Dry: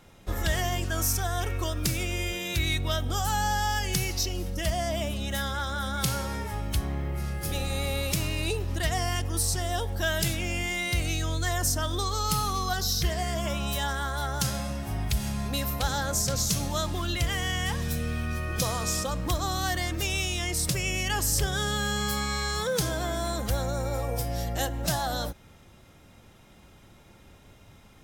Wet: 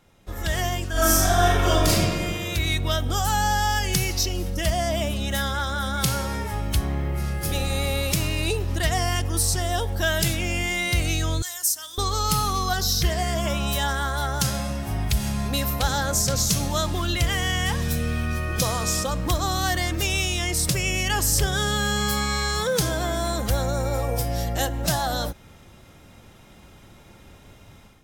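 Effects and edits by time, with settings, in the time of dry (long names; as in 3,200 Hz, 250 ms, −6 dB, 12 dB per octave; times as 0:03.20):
0:00.91–0:01.88: thrown reverb, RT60 2 s, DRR −11.5 dB
0:11.42–0:11.98: first difference
whole clip: automatic gain control gain up to 10 dB; level −5 dB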